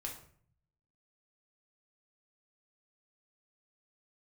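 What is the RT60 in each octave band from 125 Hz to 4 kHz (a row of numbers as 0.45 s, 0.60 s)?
1.1 s, 0.80 s, 0.55 s, 0.50 s, 0.45 s, 0.40 s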